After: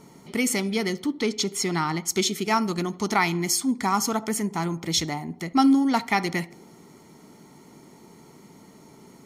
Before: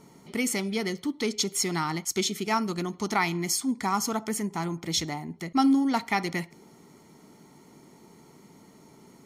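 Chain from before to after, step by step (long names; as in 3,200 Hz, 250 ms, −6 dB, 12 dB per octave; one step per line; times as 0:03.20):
0:01.06–0:02.08: high-shelf EQ 6,400 Hz −8 dB
on a send: tape delay 74 ms, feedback 71%, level −20 dB, low-pass 1,100 Hz
on the sum: level +3.5 dB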